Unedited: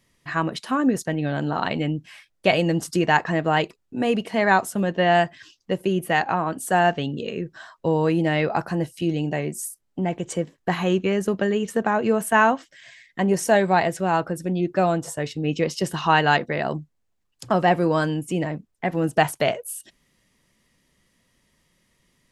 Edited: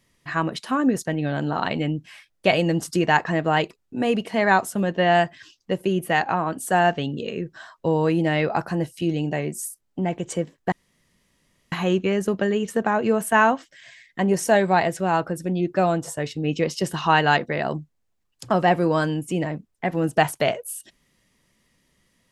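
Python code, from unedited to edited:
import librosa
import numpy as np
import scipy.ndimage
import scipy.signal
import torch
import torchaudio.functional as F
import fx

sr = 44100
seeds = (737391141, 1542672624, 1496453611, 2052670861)

y = fx.edit(x, sr, fx.insert_room_tone(at_s=10.72, length_s=1.0), tone=tone)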